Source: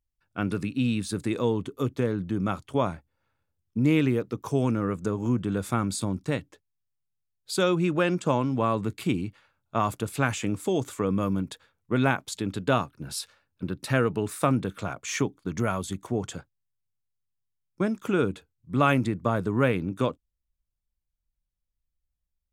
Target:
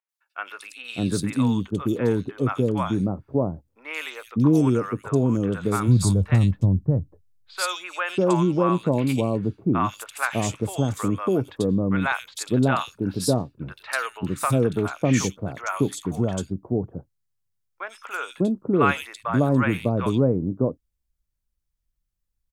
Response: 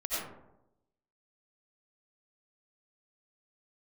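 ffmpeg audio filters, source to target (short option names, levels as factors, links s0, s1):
-filter_complex "[0:a]acrossover=split=740|2900[s0][s1][s2];[s2]adelay=90[s3];[s0]adelay=600[s4];[s4][s1][s3]amix=inputs=3:normalize=0,asplit=3[s5][s6][s7];[s5]afade=t=out:st=5.87:d=0.02[s8];[s6]asubboost=boost=6.5:cutoff=110,afade=t=in:st=5.87:d=0.02,afade=t=out:st=7.6:d=0.02[s9];[s7]afade=t=in:st=7.6:d=0.02[s10];[s8][s9][s10]amix=inputs=3:normalize=0,volume=1.68"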